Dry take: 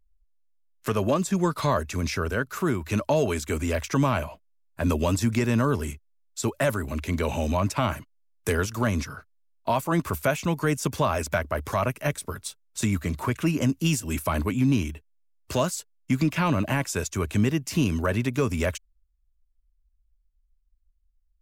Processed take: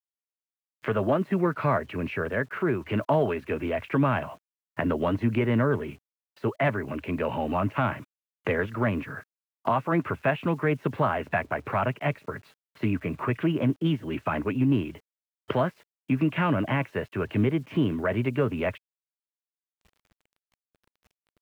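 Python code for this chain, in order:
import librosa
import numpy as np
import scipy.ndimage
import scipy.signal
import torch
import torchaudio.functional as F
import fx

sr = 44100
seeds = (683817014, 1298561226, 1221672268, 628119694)

y = fx.recorder_agc(x, sr, target_db=-22.0, rise_db_per_s=29.0, max_gain_db=30)
y = scipy.signal.sosfilt(scipy.signal.ellip(3, 1.0, 50, [110.0, 2200.0], 'bandpass', fs=sr, output='sos'), y)
y = fx.quant_dither(y, sr, seeds[0], bits=10, dither='none')
y = fx.formant_shift(y, sr, semitones=2)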